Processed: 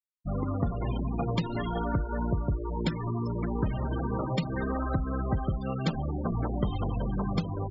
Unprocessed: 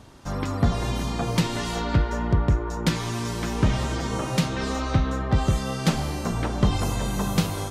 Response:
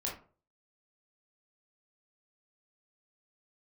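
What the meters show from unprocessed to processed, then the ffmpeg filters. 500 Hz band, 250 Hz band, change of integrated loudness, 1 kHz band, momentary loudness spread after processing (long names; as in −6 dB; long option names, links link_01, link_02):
−4.5 dB, −4.5 dB, −5.5 dB, −5.5 dB, 2 LU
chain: -af "afftfilt=real='re*gte(hypot(re,im),0.0708)':imag='im*gte(hypot(re,im),0.0708)':win_size=1024:overlap=0.75,acompressor=threshold=-26dB:ratio=4"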